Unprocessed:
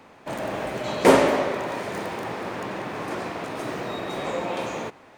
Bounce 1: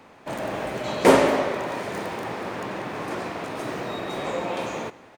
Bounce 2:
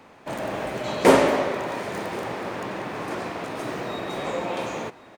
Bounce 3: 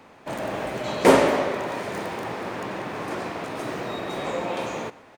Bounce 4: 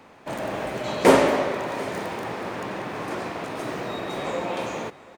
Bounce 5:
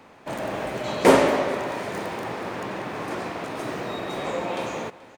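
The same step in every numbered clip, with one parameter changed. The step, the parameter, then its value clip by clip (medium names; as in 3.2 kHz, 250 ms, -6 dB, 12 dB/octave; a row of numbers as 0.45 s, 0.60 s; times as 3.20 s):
delay, time: 179 ms, 1081 ms, 121 ms, 733 ms, 431 ms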